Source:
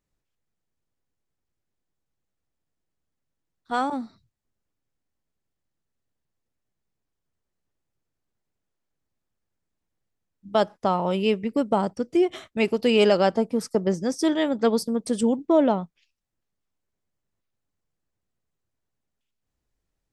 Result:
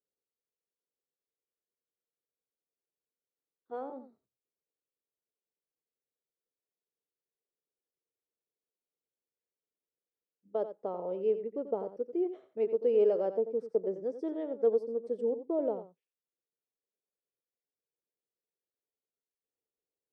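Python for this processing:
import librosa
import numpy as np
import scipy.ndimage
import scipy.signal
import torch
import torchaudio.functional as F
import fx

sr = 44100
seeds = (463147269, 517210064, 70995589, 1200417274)

y = fx.bandpass_q(x, sr, hz=460.0, q=4.2)
y = y + 10.0 ** (-11.5 / 20.0) * np.pad(y, (int(89 * sr / 1000.0), 0))[:len(y)]
y = F.gain(torch.from_numpy(y), -3.5).numpy()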